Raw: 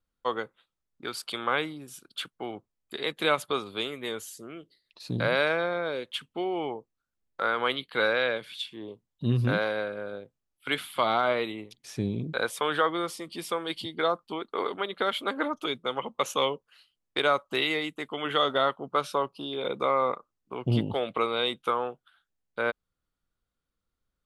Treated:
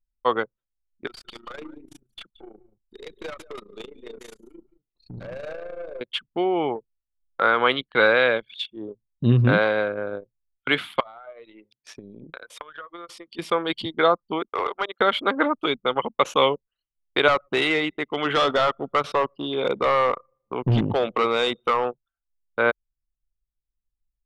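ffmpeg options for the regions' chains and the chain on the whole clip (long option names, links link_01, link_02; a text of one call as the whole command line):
ffmpeg -i in.wav -filter_complex "[0:a]asettb=1/sr,asplit=3[link_01][link_02][link_03];[link_01]atrim=end=1.074[link_04];[link_02]atrim=start=1.07:end=6.01,asetpts=PTS-STARTPTS,afade=type=in:duration=0.004:curve=qsin,afade=type=out:start_time=4.936:duration=0.004:curve=qsin,tremolo=f=27:d=0.71,aeval=exprs='(tanh(89.1*val(0)+0.2)-tanh(0.2))/89.1':channel_layout=same,aecho=1:1:176:0.473,atrim=end_sample=217854[link_05];[link_03]atrim=start=6.006[link_06];[link_04][link_05]acrossfade=duration=0.004:curve1=hsin:curve2=qsin[link_07];[link_07][link_06]acrossfade=duration=0.004:curve1=qsin:curve2=hsin,asettb=1/sr,asplit=3[link_08][link_09][link_10];[link_08]atrim=end=11.004[link_11];[link_09]atrim=start=11:end=13.39,asetpts=PTS-STARTPTS,afade=type=in:duration=0.004:curve=qsin,afade=type=out:start_time=2.386:duration=0.004:curve=qsin,highpass=frequency=620:poles=1,acompressor=threshold=-38dB:ratio=8:attack=3.2:release=140:knee=1:detection=peak,bandreject=frequency=810:width=24[link_12];[link_10]atrim=start=13.386[link_13];[link_11][link_12]acrossfade=duration=0.004:curve1=hsin:curve2=qsin[link_14];[link_14][link_13]acrossfade=duration=0.004:curve1=qsin:curve2=hsin,asettb=1/sr,asplit=3[link_15][link_16][link_17];[link_15]atrim=end=14.484[link_18];[link_16]atrim=start=14.48:end=15.01,asetpts=PTS-STARTPTS,afade=type=in:duration=0.004:curve=qsin,afade=type=out:start_time=0.526:duration=0.004:curve=qsin,highpass=560,aemphasis=mode=reproduction:type=50fm,asoftclip=type=hard:threshold=-25.5dB[link_19];[link_17]atrim=start=15.006[link_20];[link_18][link_19]acrossfade=duration=0.004:curve1=hsin:curve2=qsin[link_21];[link_21][link_20]acrossfade=duration=0.004:curve1=qsin:curve2=hsin,asettb=1/sr,asplit=3[link_22][link_23][link_24];[link_22]atrim=end=17.284[link_25];[link_23]atrim=start=17.28:end=21.86,asetpts=PTS-STARTPTS,afade=type=in:duration=0.004:curve=qsin,afade=type=out:start_time=4.576:duration=0.004:curve=qsin,asoftclip=type=hard:threshold=-23dB,aecho=1:1:117|234|351|468:0.0668|0.0374|0.021|0.0117,atrim=end_sample=201978[link_26];[link_24]atrim=start=21.856[link_27];[link_25][link_26]acrossfade=duration=0.004:curve1=hsin:curve2=qsin[link_28];[link_28][link_27]acrossfade=duration=0.004:curve1=qsin:curve2=hsin,aemphasis=mode=production:type=50fm,anlmdn=1.58,lowpass=2600,volume=8dB" out.wav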